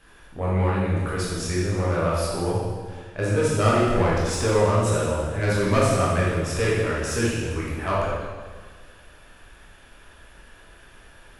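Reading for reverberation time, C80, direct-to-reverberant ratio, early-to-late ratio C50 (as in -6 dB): 1.6 s, 1.0 dB, -7.0 dB, -1.5 dB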